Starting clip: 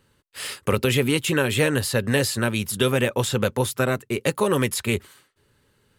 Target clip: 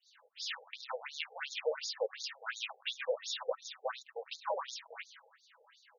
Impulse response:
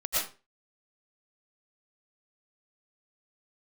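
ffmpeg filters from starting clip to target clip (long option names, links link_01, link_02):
-filter_complex "[0:a]highshelf=frequency=6800:gain=10.5,aecho=1:1:6.1:0.56,acompressor=threshold=-41dB:ratio=2.5,acrossover=split=4700[link_01][link_02];[link_01]adelay=60[link_03];[link_03][link_02]amix=inputs=2:normalize=0,aeval=exprs='clip(val(0),-1,0.0141)':channel_layout=same,asplit=2[link_04][link_05];[1:a]atrim=start_sample=2205,atrim=end_sample=4410,lowpass=2400[link_06];[link_05][link_06]afir=irnorm=-1:irlink=0,volume=-16.5dB[link_07];[link_04][link_07]amix=inputs=2:normalize=0,afftfilt=real='re*between(b*sr/1024,580*pow(5000/580,0.5+0.5*sin(2*PI*2.8*pts/sr))/1.41,580*pow(5000/580,0.5+0.5*sin(2*PI*2.8*pts/sr))*1.41)':imag='im*between(b*sr/1024,580*pow(5000/580,0.5+0.5*sin(2*PI*2.8*pts/sr))/1.41,580*pow(5000/580,0.5+0.5*sin(2*PI*2.8*pts/sr))*1.41)':win_size=1024:overlap=0.75,volume=8.5dB"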